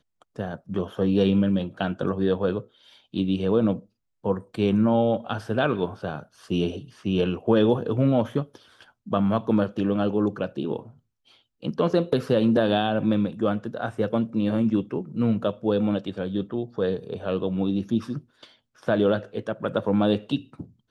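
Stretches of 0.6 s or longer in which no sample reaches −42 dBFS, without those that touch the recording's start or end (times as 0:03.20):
0:10.90–0:11.63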